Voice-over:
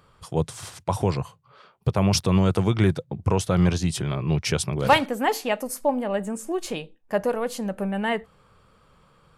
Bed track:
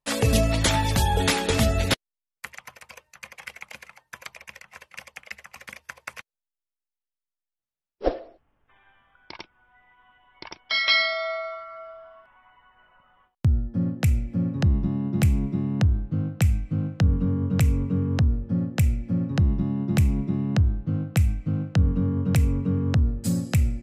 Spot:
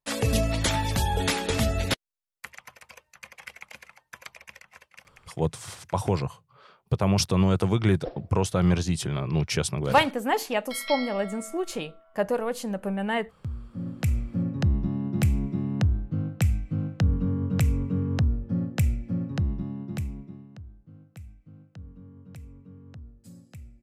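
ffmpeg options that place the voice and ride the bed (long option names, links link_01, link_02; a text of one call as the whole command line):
ffmpeg -i stem1.wav -i stem2.wav -filter_complex "[0:a]adelay=5050,volume=-2dB[link_01];[1:a]volume=7.5dB,afade=type=out:start_time=4.57:duration=0.56:silence=0.316228,afade=type=in:start_time=13.68:duration=0.51:silence=0.281838,afade=type=out:start_time=18.89:duration=1.61:silence=0.0891251[link_02];[link_01][link_02]amix=inputs=2:normalize=0" out.wav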